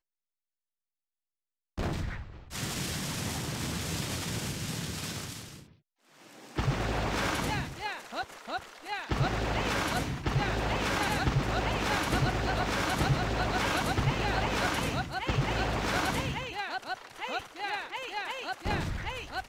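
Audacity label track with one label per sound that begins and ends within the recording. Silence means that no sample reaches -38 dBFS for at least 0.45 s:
1.780000	5.560000	sound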